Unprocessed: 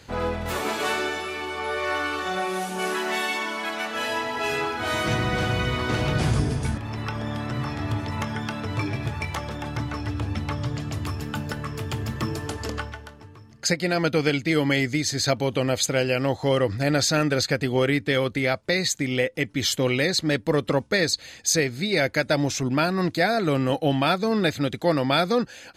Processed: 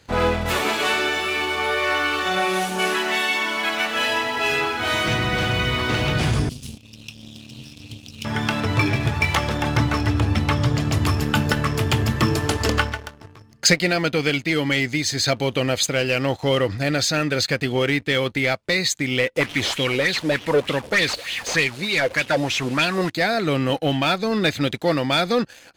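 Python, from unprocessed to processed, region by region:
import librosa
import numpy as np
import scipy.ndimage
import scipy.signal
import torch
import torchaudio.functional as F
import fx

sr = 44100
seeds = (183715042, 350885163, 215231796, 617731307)

y = fx.chain(x, sr, fx.brickwall_bandstop(low_hz=290.0, high_hz=2500.0),
    fx.bass_treble(bass_db=-12, treble_db=1),
    fx.doppler_dist(depth_ms=0.28), at=(6.49, 8.25))
y = fx.chain(y, sr, fx.delta_mod(bps=64000, step_db=-33.5),
    fx.bell_lfo(hz=3.3, low_hz=460.0, high_hz=3300.0, db=14), at=(19.36, 23.1))
y = fx.dynamic_eq(y, sr, hz=2800.0, q=0.97, threshold_db=-40.0, ratio=4.0, max_db=6)
y = fx.leveller(y, sr, passes=2)
y = fx.rider(y, sr, range_db=10, speed_s=0.5)
y = F.gain(torch.from_numpy(y), -6.0).numpy()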